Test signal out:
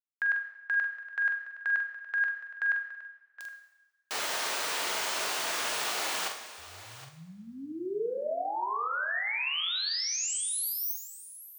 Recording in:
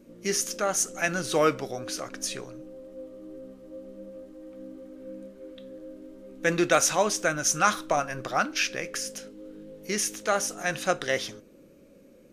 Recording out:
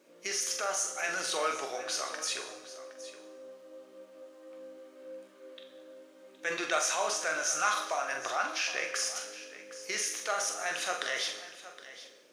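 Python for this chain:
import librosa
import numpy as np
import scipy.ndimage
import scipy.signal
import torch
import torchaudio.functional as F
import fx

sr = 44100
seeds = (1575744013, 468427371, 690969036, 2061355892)

p1 = scipy.signal.sosfilt(scipy.signal.butter(2, 670.0, 'highpass', fs=sr, output='sos'), x)
p2 = fx.peak_eq(p1, sr, hz=13000.0, db=-11.0, octaves=0.49)
p3 = fx.over_compress(p2, sr, threshold_db=-34.0, ratio=-0.5)
p4 = p2 + (p3 * librosa.db_to_amplitude(-1.0))
p5 = fx.quant_dither(p4, sr, seeds[0], bits=12, dither='none')
p6 = fx.doubler(p5, sr, ms=44.0, db=-7.0)
p7 = p6 + 10.0 ** (-15.5 / 20.0) * np.pad(p6, (int(767 * sr / 1000.0), 0))[:len(p6)]
p8 = fx.rev_double_slope(p7, sr, seeds[1], early_s=0.96, late_s=3.2, knee_db=-24, drr_db=5.5)
y = p8 * librosa.db_to_amplitude(-7.5)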